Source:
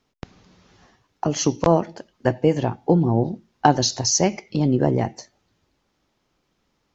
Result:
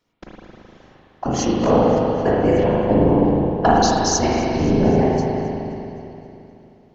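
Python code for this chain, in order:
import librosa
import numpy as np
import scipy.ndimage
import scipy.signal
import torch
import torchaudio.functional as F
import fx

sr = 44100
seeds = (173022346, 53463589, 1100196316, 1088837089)

p1 = fx.peak_eq(x, sr, hz=100.0, db=-14.5, octaves=0.26)
p2 = p1 + fx.echo_feedback(p1, sr, ms=262, feedback_pct=57, wet_db=-19, dry=0)
p3 = fx.whisperise(p2, sr, seeds[0])
p4 = fx.rev_spring(p3, sr, rt60_s=3.0, pass_ms=(38, 52), chirp_ms=65, drr_db=-5.5)
y = F.gain(torch.from_numpy(p4), -2.5).numpy()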